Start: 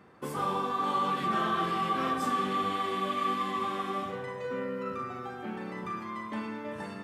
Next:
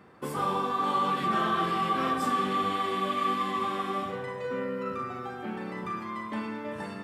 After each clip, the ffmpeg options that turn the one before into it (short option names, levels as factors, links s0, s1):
-af "bandreject=f=6300:w=16,volume=1.26"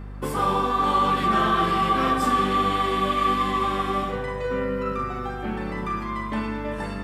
-af "aeval=exprs='val(0)+0.00891*(sin(2*PI*50*n/s)+sin(2*PI*2*50*n/s)/2+sin(2*PI*3*50*n/s)/3+sin(2*PI*4*50*n/s)/4+sin(2*PI*5*50*n/s)/5)':c=same,volume=2"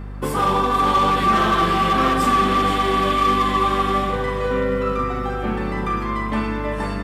-filter_complex "[0:a]asoftclip=type=hard:threshold=0.133,asplit=2[s0][s1];[s1]aecho=0:1:479|958|1437|1916:0.299|0.125|0.0527|0.0221[s2];[s0][s2]amix=inputs=2:normalize=0,volume=1.68"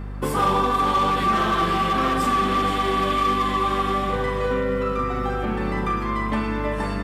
-af "alimiter=limit=0.2:level=0:latency=1:release=264"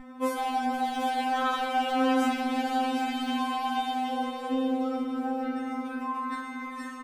-filter_complex "[0:a]asplit=2[s0][s1];[s1]aecho=0:1:764:0.398[s2];[s0][s2]amix=inputs=2:normalize=0,afftfilt=real='re*3.46*eq(mod(b,12),0)':imag='im*3.46*eq(mod(b,12),0)':win_size=2048:overlap=0.75,volume=0.596"